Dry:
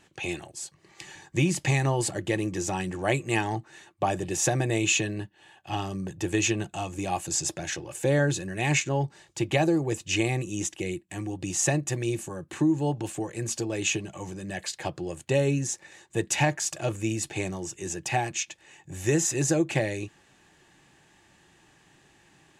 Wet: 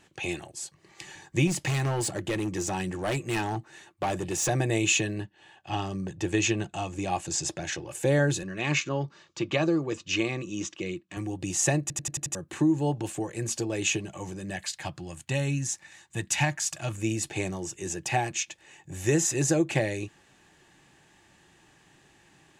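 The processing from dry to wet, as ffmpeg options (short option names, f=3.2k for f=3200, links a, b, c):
-filter_complex "[0:a]asettb=1/sr,asplit=3[a][b][c];[a]atrim=end=1.474[d];[b]atrim=start=1.47:end=4.49,asetpts=PTS-STARTPTS,afade=t=in:d=0.004:c=qsin,afade=t=out:st=3.016:d=0.004:c=qsin,asoftclip=type=hard:threshold=-24dB[e];[c]atrim=start=4.486[f];[d][e]acrossfade=d=0.004:c1=hsin:c2=qsin[g];[g][f]acrossfade=d=0.004:c1=qsin:c2=hsin,asettb=1/sr,asplit=3[h][i][j];[h]atrim=end=5.214[k];[i]atrim=start=5.21:end=7.88,asetpts=PTS-STARTPTS,afade=t=in:d=0.004:c=qsin,afade=t=out:st=2.666:d=0.004:c=qsin,lowpass=7.6k[l];[j]atrim=start=7.876[m];[k][l]acrossfade=d=0.004:c1=hsin:c2=qsin[n];[n][m]acrossfade=d=0.004:c1=qsin:c2=hsin,asettb=1/sr,asplit=3[o][p][q];[o]atrim=end=8.434[r];[p]atrim=start=8.43:end=11.17,asetpts=PTS-STARTPTS,afade=t=in:d=0.004:c=qsin,afade=t=out:st=2.736:d=0.004:c=qsin,highpass=110,equalizer=f=120:t=q:w=4:g=-7,equalizer=f=400:t=q:w=4:g=-3,equalizer=f=780:t=q:w=4:g=-9,equalizer=f=1.2k:t=q:w=4:g=8,equalizer=f=1.9k:t=q:w=4:g=-4,lowpass=f=6k:w=0.5412,lowpass=f=6k:w=1.3066[s];[q]atrim=start=11.166[t];[r][s]acrossfade=d=0.004:c1=hsin:c2=qsin[u];[u][t]acrossfade=d=0.004:c1=qsin:c2=hsin,asettb=1/sr,asplit=3[v][w][x];[v]atrim=end=14.564[y];[w]atrim=start=14.56:end=16.98,asetpts=PTS-STARTPTS,afade=t=in:d=0.004:c=qsin,afade=t=out:st=2.416:d=0.004:c=qsin,equalizer=f=440:w=1.5:g=-13.5[z];[x]atrim=start=16.976[aa];[y][z]acrossfade=d=0.004:c1=hsin:c2=qsin[ab];[ab][aa]acrossfade=d=0.004:c1=qsin:c2=hsin,asplit=7[ac][ad][ae][af][ag][ah][ai];[ac]atrim=end=11.902[aj];[ad]atrim=start=11.808:end=11.902[ak];[ae]atrim=start=11.808:end=11.902[al];[af]atrim=start=11.808:end=11.902[am];[ag]atrim=start=11.808:end=11.902[an];[ah]atrim=start=11.808:end=11.902[ao];[ai]atrim=start=12.348[ap];[aj][ak]acrossfade=d=0.004:c1=hsin:c2=hsin[aq];[aq][al]acrossfade=d=0.004:c1=hsin:c2=hsin[ar];[ar][am]acrossfade=d=0.004:c1=hsin:c2=hsin[as];[as][an]acrossfade=d=0.004:c1=hsin:c2=hsin[at];[at][ao]acrossfade=d=0.004:c1=hsin:c2=hsin[au];[au][ap]acrossfade=d=0.004:c1=hsin:c2=hsin"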